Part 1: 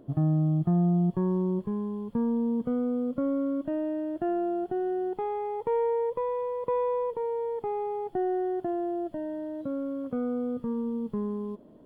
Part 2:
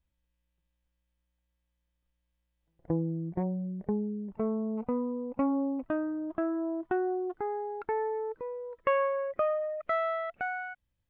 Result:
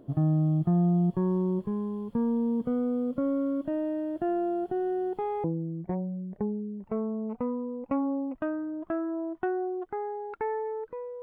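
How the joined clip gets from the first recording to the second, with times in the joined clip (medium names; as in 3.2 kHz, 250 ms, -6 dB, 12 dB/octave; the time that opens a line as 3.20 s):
part 1
5.44 s: go over to part 2 from 2.92 s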